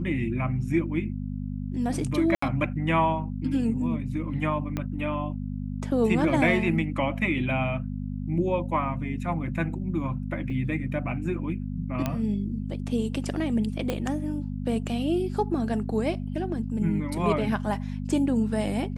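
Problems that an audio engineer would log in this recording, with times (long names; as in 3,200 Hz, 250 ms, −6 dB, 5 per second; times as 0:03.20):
mains hum 50 Hz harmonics 5 −32 dBFS
0:02.35–0:02.42: drop-out 74 ms
0:04.77: click −16 dBFS
0:10.50: drop-out 2.6 ms
0:12.06: click −13 dBFS
0:13.90: click −14 dBFS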